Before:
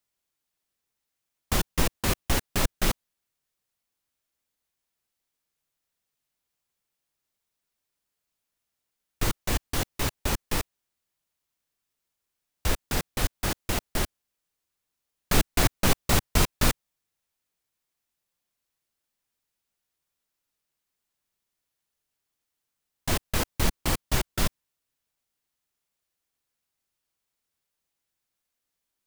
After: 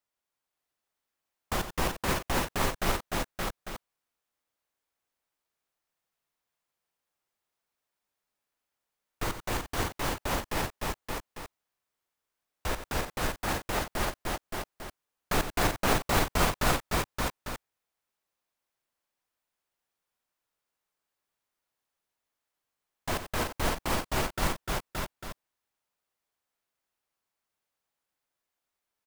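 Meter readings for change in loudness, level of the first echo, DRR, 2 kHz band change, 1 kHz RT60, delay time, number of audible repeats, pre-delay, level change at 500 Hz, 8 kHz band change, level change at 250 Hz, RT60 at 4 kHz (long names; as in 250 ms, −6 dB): −3.5 dB, −11.0 dB, no reverb audible, 0.0 dB, no reverb audible, 90 ms, 4, no reverb audible, +1.0 dB, −5.0 dB, −2.5 dB, no reverb audible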